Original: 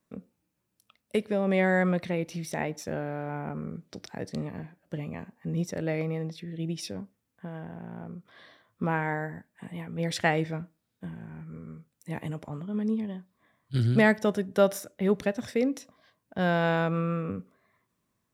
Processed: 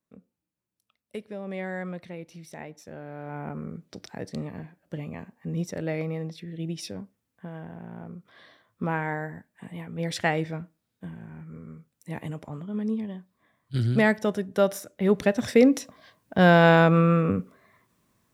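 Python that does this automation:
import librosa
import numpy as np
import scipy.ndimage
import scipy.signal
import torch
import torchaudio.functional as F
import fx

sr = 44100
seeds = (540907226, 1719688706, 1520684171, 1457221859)

y = fx.gain(x, sr, db=fx.line((2.92, -9.5), (3.43, 0.0), (14.84, 0.0), (15.56, 9.0)))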